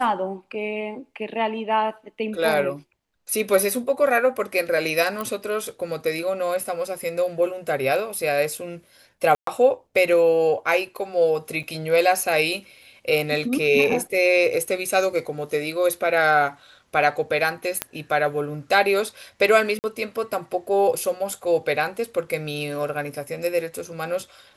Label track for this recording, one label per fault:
5.210000	5.210000	click −15 dBFS
9.350000	9.470000	drop-out 123 ms
11.630000	11.640000	drop-out 6 ms
17.820000	17.820000	click −5 dBFS
19.790000	19.840000	drop-out 49 ms

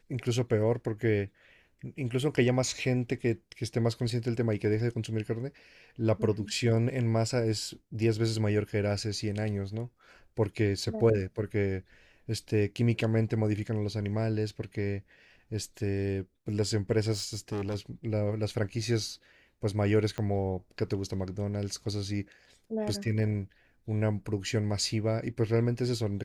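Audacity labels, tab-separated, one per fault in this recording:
17.120000	17.760000	clipping −29.5 dBFS
20.180000	20.180000	click −21 dBFS

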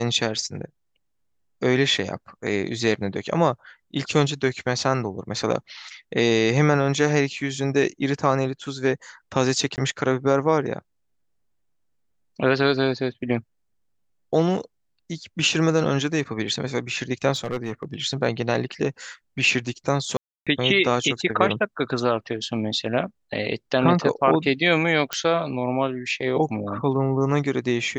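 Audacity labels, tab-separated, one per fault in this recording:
9.760000	9.780000	drop-out 18 ms
17.320000	17.940000	clipping −21.5 dBFS
20.170000	20.470000	drop-out 296 ms
25.130000	25.130000	click −8 dBFS

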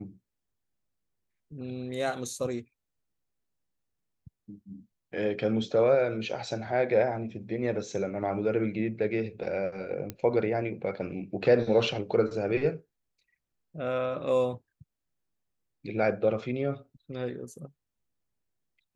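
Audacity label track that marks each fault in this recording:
10.100000	10.100000	click −19 dBFS

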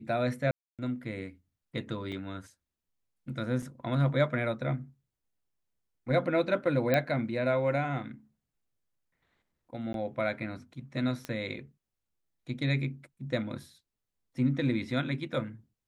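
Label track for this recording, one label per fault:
0.510000	0.790000	drop-out 277 ms
2.120000	2.120000	drop-out 4.4 ms
3.620000	3.620000	drop-out 4.8 ms
6.940000	6.940000	click −13 dBFS
9.930000	9.940000	drop-out 12 ms
11.250000	11.250000	click −21 dBFS

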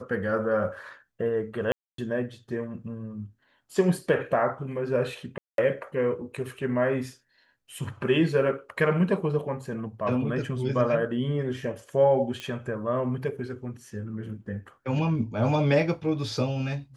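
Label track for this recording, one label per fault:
1.720000	1.980000	drop-out 263 ms
5.380000	5.580000	drop-out 202 ms
12.400000	12.400000	click −21 dBFS

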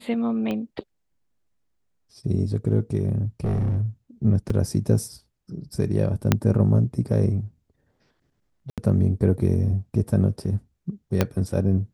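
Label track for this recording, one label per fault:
0.510000	0.510000	click −17 dBFS
3.440000	3.830000	clipping −19.5 dBFS
4.500000	4.500000	drop-out 3.6 ms
6.320000	6.320000	click −3 dBFS
8.700000	8.780000	drop-out 77 ms
11.210000	11.210000	click −5 dBFS

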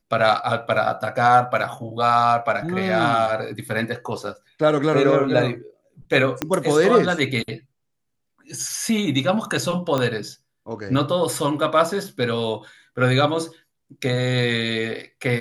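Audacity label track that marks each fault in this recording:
6.420000	6.420000	click −7 dBFS
9.980000	9.980000	click −10 dBFS

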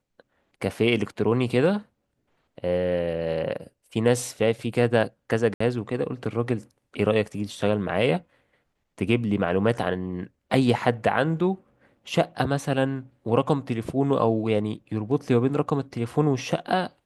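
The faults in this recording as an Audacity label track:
5.540000	5.600000	drop-out 64 ms

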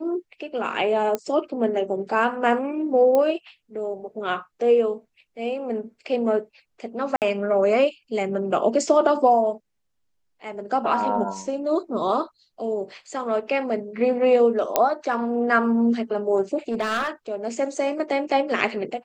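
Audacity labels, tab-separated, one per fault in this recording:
1.150000	1.150000	click −12 dBFS
3.150000	3.150000	click −11 dBFS
7.160000	7.220000	drop-out 58 ms
14.760000	14.760000	click −3 dBFS
16.680000	17.090000	clipping −19.5 dBFS

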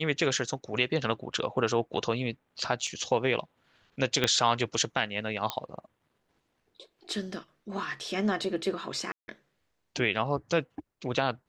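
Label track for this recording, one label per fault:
2.870000	2.870000	drop-out 3.3 ms
4.240000	4.240000	click −10 dBFS
5.500000	5.500000	click −13 dBFS
9.120000	9.280000	drop-out 160 ms

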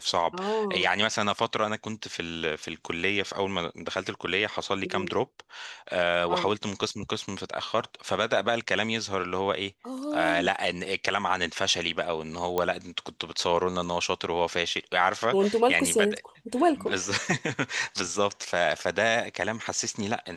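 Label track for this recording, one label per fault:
12.580000	12.580000	click −13 dBFS

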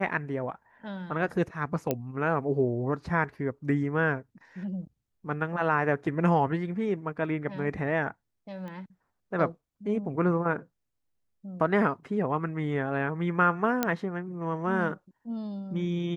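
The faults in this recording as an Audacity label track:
1.910000	1.910000	click −13 dBFS
8.680000	8.680000	click −30 dBFS
13.830000	13.830000	click −10 dBFS

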